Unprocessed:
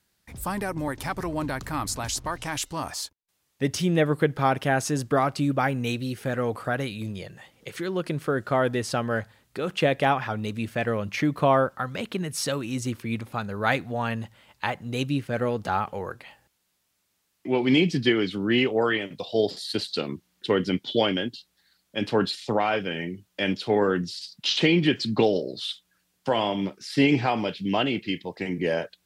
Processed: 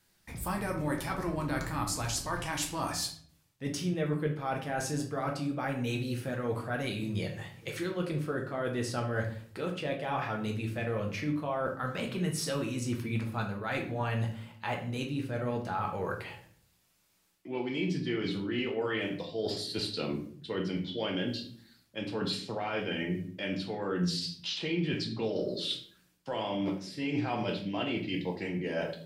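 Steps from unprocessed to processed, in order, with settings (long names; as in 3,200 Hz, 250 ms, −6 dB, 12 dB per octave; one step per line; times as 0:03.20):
reversed playback
downward compressor 12 to 1, threshold −32 dBFS, peak gain reduction 17.5 dB
reversed playback
rectangular room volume 66 cubic metres, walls mixed, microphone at 0.66 metres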